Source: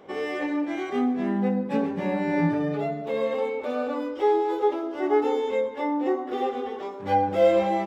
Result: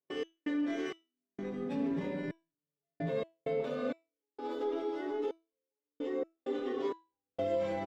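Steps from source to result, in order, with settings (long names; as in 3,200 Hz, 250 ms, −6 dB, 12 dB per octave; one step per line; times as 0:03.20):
high-pass filter 89 Hz 24 dB per octave
notch filter 790 Hz, Q 12
single-tap delay 596 ms −7 dB
downward compressor, threshold −25 dBFS, peak gain reduction 10.5 dB
low-shelf EQ 440 Hz +9.5 dB
brickwall limiter −23.5 dBFS, peak gain reduction 12 dB
noise gate −31 dBFS, range −47 dB
comb filter 7.4 ms, depth 61%
convolution reverb RT60 0.80 s, pre-delay 6 ms, DRR 4.5 dB
gate pattern "x.xx..xxxx..." 65 BPM −60 dB
parametric band 4,300 Hz +7.5 dB 2.3 octaves
tuned comb filter 330 Hz, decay 0.29 s, harmonics all, mix 60%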